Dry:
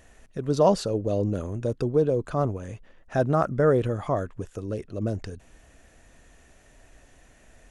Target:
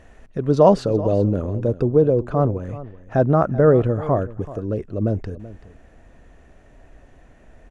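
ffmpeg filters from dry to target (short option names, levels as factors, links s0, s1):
-af "asetnsamples=n=441:p=0,asendcmd='1.26 lowpass f 1000',lowpass=f=1700:p=1,aecho=1:1:382:0.15,volume=2.24"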